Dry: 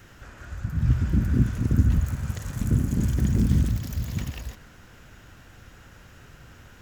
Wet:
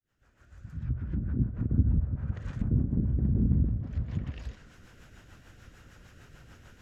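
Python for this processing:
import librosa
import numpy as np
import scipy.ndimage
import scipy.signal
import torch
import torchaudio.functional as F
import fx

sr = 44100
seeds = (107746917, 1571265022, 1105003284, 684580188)

y = fx.fade_in_head(x, sr, length_s=2.09)
y = fx.env_lowpass_down(y, sr, base_hz=670.0, full_db=-21.5)
y = fx.rotary(y, sr, hz=6.7)
y = y * 10.0 ** (-2.5 / 20.0)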